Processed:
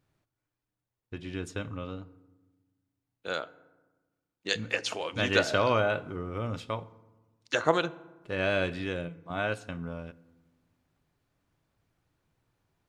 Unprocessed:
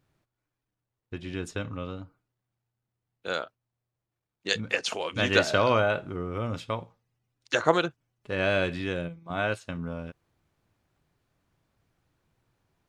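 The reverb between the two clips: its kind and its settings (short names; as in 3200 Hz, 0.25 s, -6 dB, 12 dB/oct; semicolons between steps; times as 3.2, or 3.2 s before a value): FDN reverb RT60 1.2 s, low-frequency decay 1.45×, high-frequency decay 0.5×, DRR 17 dB; gain -2.5 dB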